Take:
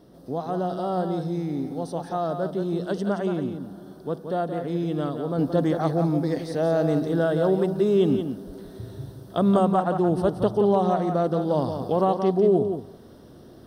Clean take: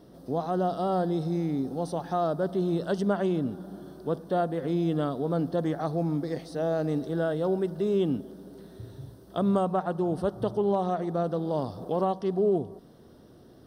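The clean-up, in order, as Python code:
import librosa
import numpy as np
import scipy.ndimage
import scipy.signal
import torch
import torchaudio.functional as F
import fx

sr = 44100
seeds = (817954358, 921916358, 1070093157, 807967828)

y = fx.highpass(x, sr, hz=140.0, slope=24, at=(8.46, 8.58), fade=0.02)
y = fx.fix_echo_inverse(y, sr, delay_ms=175, level_db=-7.5)
y = fx.fix_level(y, sr, at_s=5.38, step_db=-5.0)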